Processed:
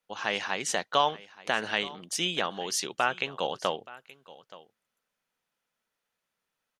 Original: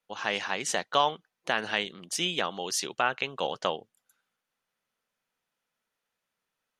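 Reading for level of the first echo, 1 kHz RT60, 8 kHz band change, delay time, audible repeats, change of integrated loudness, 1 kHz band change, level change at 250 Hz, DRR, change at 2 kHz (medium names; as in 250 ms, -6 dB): -19.5 dB, no reverb, 0.0 dB, 875 ms, 1, 0.0 dB, 0.0 dB, 0.0 dB, no reverb, 0.0 dB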